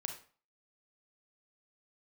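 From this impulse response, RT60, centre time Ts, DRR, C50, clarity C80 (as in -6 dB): 0.40 s, 18 ms, 4.0 dB, 7.5 dB, 12.5 dB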